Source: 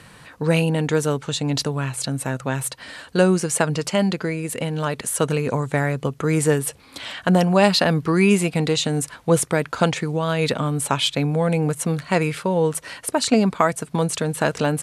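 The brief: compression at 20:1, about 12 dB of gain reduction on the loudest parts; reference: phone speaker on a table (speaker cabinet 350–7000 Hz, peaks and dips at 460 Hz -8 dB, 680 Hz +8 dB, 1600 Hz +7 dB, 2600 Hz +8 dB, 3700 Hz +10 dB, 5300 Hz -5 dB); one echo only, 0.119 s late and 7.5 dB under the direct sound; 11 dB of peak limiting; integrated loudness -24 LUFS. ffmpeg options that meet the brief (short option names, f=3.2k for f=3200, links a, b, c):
-af "acompressor=threshold=-23dB:ratio=20,alimiter=limit=-19dB:level=0:latency=1,highpass=f=350:w=0.5412,highpass=f=350:w=1.3066,equalizer=f=460:t=q:w=4:g=-8,equalizer=f=680:t=q:w=4:g=8,equalizer=f=1.6k:t=q:w=4:g=7,equalizer=f=2.6k:t=q:w=4:g=8,equalizer=f=3.7k:t=q:w=4:g=10,equalizer=f=5.3k:t=q:w=4:g=-5,lowpass=f=7k:w=0.5412,lowpass=f=7k:w=1.3066,aecho=1:1:119:0.422,volume=5dB"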